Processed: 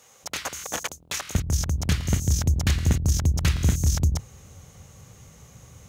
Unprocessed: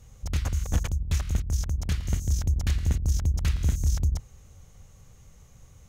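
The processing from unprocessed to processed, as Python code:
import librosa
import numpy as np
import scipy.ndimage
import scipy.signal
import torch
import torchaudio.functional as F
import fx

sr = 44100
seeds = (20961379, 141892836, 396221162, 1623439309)

y = fx.highpass(x, sr, hz=fx.steps((0.0, 530.0), (1.35, 94.0)), slope=12)
y = y * 10.0 ** (8.5 / 20.0)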